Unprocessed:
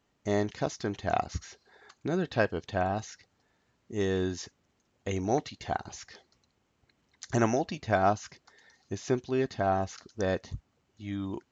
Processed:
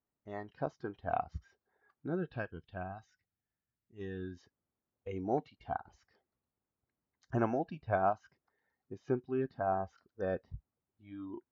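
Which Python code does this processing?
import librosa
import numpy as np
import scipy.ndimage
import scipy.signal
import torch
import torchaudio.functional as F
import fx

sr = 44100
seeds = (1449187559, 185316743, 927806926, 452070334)

y = scipy.signal.sosfilt(scipy.signal.butter(2, 1600.0, 'lowpass', fs=sr, output='sos'), x)
y = fx.noise_reduce_blind(y, sr, reduce_db=13)
y = fx.graphic_eq(y, sr, hz=(250, 500, 1000), db=(-4, -9, -8), at=(2.36, 4.37))
y = F.gain(torch.from_numpy(y), -4.5).numpy()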